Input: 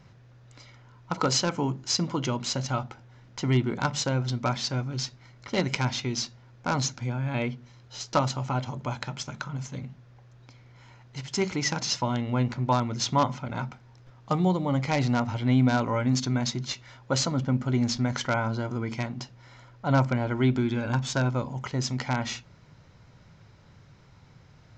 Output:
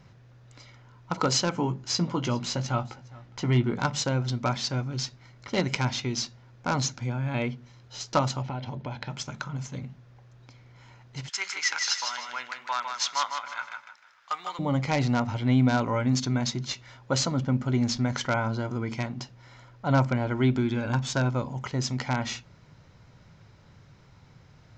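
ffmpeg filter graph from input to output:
ffmpeg -i in.wav -filter_complex "[0:a]asettb=1/sr,asplit=3[link_01][link_02][link_03];[link_01]atrim=end=1.514[link_04];[link_02]atrim=start=1.51:end=3.82,asetpts=PTS-STARTPTS,afade=type=in:duration=0.004:curve=qsin,afade=type=out:start_time=2.306:duration=0.004:curve=qsin,highshelf=frequency=6900:gain=-7.5,asplit=2[link_05][link_06];[link_06]adelay=17,volume=-9dB[link_07];[link_05][link_07]amix=inputs=2:normalize=0,atrim=end_sample=101871,aecho=1:1:410:0.075,atrim=end_sample=101871[link_08];[link_03]atrim=start=3.816[link_09];[link_04][link_08]acrossfade=duration=0.004:curve1=hsin:curve2=qsin[link_10];[link_10][link_09]acrossfade=duration=0.004:curve1=qsin:curve2=hsin,asettb=1/sr,asplit=3[link_11][link_12][link_13];[link_11]atrim=end=8.424[link_14];[link_12]atrim=start=8.42:end=9.1,asetpts=PTS-STARTPTS,afade=type=in:duration=0.004:curve=qsin,afade=type=out:start_time=0.676:duration=0.004:curve=qsin,lowpass=frequency=4700:width=0.5412,lowpass=frequency=4700:width=1.3066,equalizer=frequency=1200:width=5.7:gain=-11,acompressor=threshold=-29dB:ratio=6:attack=3.2:release=140:knee=1:detection=peak[link_15];[link_13]atrim=start=9.096[link_16];[link_14][link_15]acrossfade=duration=0.004:curve1=hsin:curve2=qsin[link_17];[link_17][link_16]acrossfade=duration=0.004:curve1=qsin:curve2=hsin,asettb=1/sr,asplit=3[link_18][link_19][link_20];[link_18]atrim=end=11.294[link_21];[link_19]atrim=start=11.29:end=14.59,asetpts=PTS-STARTPTS,afade=type=in:duration=0.004:curve=qsin,afade=type=out:start_time=3.296:duration=0.004:curve=qsin,highpass=frequency=1500:width_type=q:width=1.8,aecho=1:1:154|308|462|616:0.531|0.165|0.051|0.0158,atrim=end_sample=145530[link_22];[link_20]atrim=start=14.586[link_23];[link_21][link_22]acrossfade=duration=0.004:curve1=hsin:curve2=qsin[link_24];[link_24][link_23]acrossfade=duration=0.004:curve1=qsin:curve2=hsin" out.wav

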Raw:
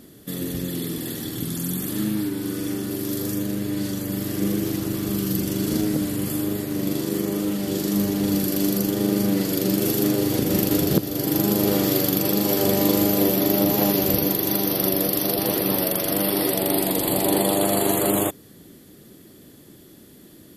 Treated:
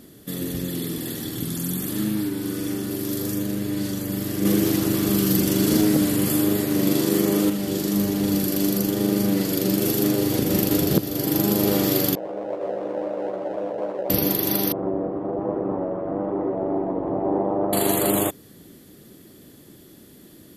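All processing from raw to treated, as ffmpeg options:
ffmpeg -i in.wav -filter_complex "[0:a]asettb=1/sr,asplit=3[link_01][link_02][link_03];[link_01]atrim=end=4.454[link_04];[link_02]atrim=start=4.45:end=7.5,asetpts=PTS-STARTPTS,afade=type=in:duration=0.004:curve=qsin,afade=type=out:start_time=3.046:duration=0.004:curve=qsin,lowshelf=frequency=100:gain=-8,acontrast=40,asoftclip=type=hard:threshold=-10.5dB[link_05];[link_03]atrim=start=7.496[link_06];[link_04][link_05]acrossfade=duration=0.004:curve1=hsin:curve2=qsin[link_07];[link_07][link_06]acrossfade=duration=0.004:curve1=qsin:curve2=hsin,asettb=1/sr,asplit=3[link_08][link_09][link_10];[link_08]atrim=end=12.154[link_11];[link_09]atrim=start=12.15:end=14.1,asetpts=PTS-STARTPTS,afade=type=in:duration=0.004:curve=qsin,afade=type=out:start_time=1.946:duration=0.004:curve=qsin,acrusher=samples=27:mix=1:aa=0.000001:lfo=1:lforange=27:lforate=3.9,bandpass=frequency=560:width_type=q:width=4.5,asplit=2[link_12][link_13];[link_13]adelay=16,volume=-4dB[link_14];[link_12][link_14]amix=inputs=2:normalize=0,atrim=end_sample=85995[link_15];[link_10]atrim=start=14.096[link_16];[link_11][link_15]acrossfade=duration=0.004:curve1=hsin:curve2=qsin[link_17];[link_17][link_16]acrossfade=duration=0.004:curve1=qsin:curve2=hsin,asettb=1/sr,asplit=3[link_18][link_19][link_20];[link_18]atrim=end=14.724[link_21];[link_19]atrim=start=14.72:end=17.73,asetpts=PTS-STARTPTS,afade=type=in:duration=0.004:curve=qsin,afade=type=out:start_time=3.006:duration=0.004:curve=qsin,lowpass=frequency=1100:width=0.5412,lowpass=frequency=1100:width=1.3066,equalizer=frequency=110:width_type=o:width=2.4:gain=-4.5,asplit=2[link_22][link_23];[link_23]adelay=18,volume=-12dB[link_24];[link_22][link_24]amix=inputs=2:normalize=0,atrim=end_sample=132741[link_25];[link_20]atrim=start=17.726[link_26];[link_21][link_25]acrossfade=duration=0.004:curve1=hsin:curve2=qsin[link_27];[link_27][link_26]acrossfade=duration=0.004:curve1=qsin:curve2=hsin" out.wav

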